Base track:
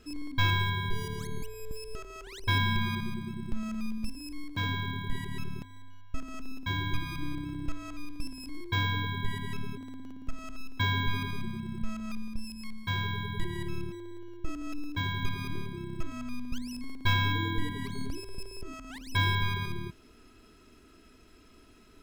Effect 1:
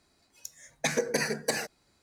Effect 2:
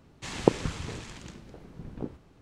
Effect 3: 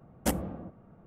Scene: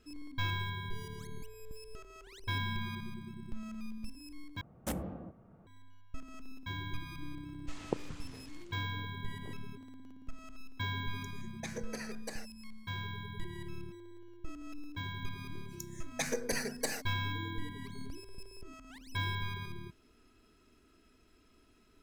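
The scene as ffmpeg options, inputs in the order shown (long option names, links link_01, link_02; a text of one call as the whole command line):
ffmpeg -i bed.wav -i cue0.wav -i cue1.wav -i cue2.wav -filter_complex "[1:a]asplit=2[link_01][link_02];[0:a]volume=-8.5dB[link_03];[3:a]volume=27.5dB,asoftclip=hard,volume=-27.5dB[link_04];[link_02]highshelf=frequency=9400:gain=9[link_05];[link_03]asplit=2[link_06][link_07];[link_06]atrim=end=4.614[link_08];[link_04]atrim=end=1.06,asetpts=PTS-STARTPTS,volume=-4dB[link_09];[link_07]atrim=start=5.666[link_10];[2:a]atrim=end=2.41,asetpts=PTS-STARTPTS,volume=-14dB,afade=type=in:duration=0.004:curve=hsin,afade=type=out:start_time=2.406:duration=0.004:curve=hsin,adelay=7450[link_11];[link_01]atrim=end=2.02,asetpts=PTS-STARTPTS,volume=-15dB,afade=type=in:duration=0.004:curve=hsin,afade=type=out:start_time=2.016:duration=0.004:curve=hsin,adelay=10790[link_12];[link_05]atrim=end=2.02,asetpts=PTS-STARTPTS,volume=-7.5dB,afade=type=in:duration=0.004:curve=hsin,afade=type=out:start_time=2.016:duration=0.004:curve=hsin,adelay=15350[link_13];[link_08][link_09]acrossfade=duration=0.004:curve1=hsin:curve2=hsin[link_14];[link_14][link_10]acrossfade=duration=0.004:curve1=hsin:curve2=hsin[link_15];[link_15][link_11][link_12][link_13]amix=inputs=4:normalize=0" out.wav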